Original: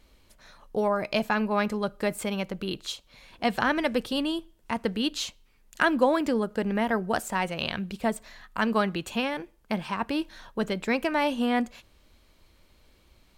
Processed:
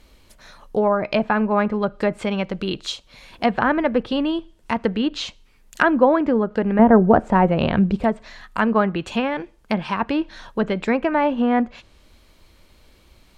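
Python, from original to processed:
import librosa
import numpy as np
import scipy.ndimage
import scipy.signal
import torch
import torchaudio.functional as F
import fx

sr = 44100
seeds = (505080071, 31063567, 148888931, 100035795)

y = fx.env_lowpass_down(x, sr, base_hz=1600.0, full_db=-22.5)
y = fx.tilt_shelf(y, sr, db=9.5, hz=1500.0, at=(6.79, 8.04))
y = F.gain(torch.from_numpy(y), 7.0).numpy()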